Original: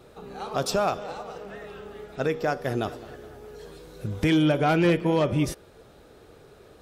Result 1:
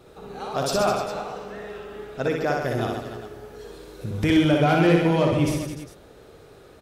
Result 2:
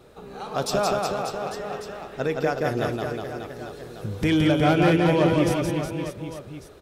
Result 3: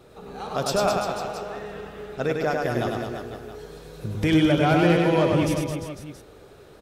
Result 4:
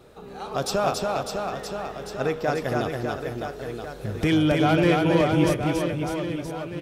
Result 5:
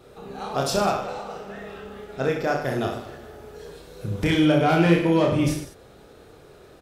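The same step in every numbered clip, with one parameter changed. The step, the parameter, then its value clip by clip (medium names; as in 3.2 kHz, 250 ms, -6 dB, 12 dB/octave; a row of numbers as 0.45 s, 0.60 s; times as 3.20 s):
reverse bouncing-ball echo, first gap: 60 ms, 170 ms, 100 ms, 280 ms, 30 ms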